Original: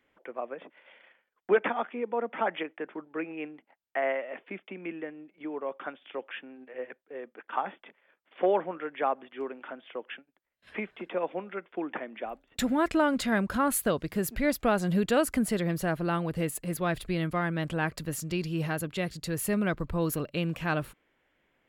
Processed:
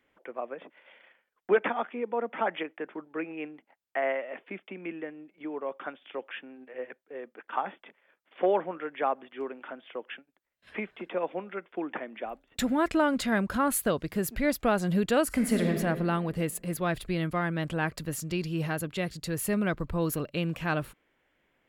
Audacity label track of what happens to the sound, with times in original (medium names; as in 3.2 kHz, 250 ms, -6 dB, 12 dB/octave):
15.270000	15.720000	reverb throw, RT60 1.8 s, DRR 2 dB